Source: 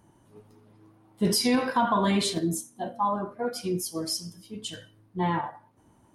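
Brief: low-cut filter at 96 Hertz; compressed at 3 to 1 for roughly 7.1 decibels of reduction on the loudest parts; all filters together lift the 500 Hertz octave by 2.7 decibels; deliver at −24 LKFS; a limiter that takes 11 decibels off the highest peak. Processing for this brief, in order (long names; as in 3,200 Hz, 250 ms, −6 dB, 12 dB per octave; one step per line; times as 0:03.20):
high-pass filter 96 Hz
parametric band 500 Hz +3.5 dB
downward compressor 3 to 1, threshold −28 dBFS
level +13.5 dB
brickwall limiter −15 dBFS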